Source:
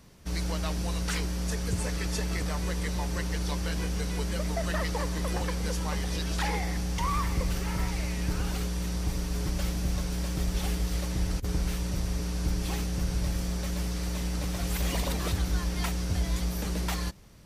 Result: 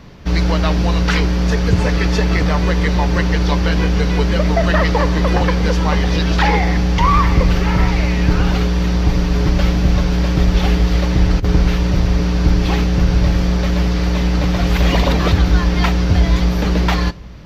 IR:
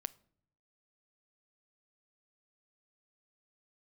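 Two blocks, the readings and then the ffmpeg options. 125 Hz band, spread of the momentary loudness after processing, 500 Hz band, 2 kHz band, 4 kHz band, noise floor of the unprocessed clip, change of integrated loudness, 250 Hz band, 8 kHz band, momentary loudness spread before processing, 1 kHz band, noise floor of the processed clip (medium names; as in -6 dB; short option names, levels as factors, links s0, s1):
+15.5 dB, 2 LU, +16.5 dB, +15.5 dB, +12.0 dB, -33 dBFS, +15.0 dB, +16.0 dB, +3.0 dB, 2 LU, +16.0 dB, -18 dBFS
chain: -filter_complex "[0:a]asplit=2[s0][s1];[s1]highshelf=f=8200:g=-11.5[s2];[1:a]atrim=start_sample=2205,lowpass=5800[s3];[s2][s3]afir=irnorm=-1:irlink=0,volume=7.08[s4];[s0][s4]amix=inputs=2:normalize=0"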